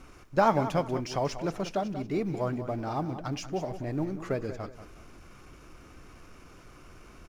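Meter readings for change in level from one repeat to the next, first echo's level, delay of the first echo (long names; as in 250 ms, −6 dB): −10.0 dB, −12.0 dB, 187 ms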